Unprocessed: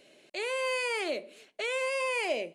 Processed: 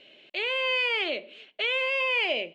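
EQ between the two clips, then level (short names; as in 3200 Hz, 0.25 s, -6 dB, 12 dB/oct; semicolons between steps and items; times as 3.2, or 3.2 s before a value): synth low-pass 3100 Hz, resonance Q 3.8; 0.0 dB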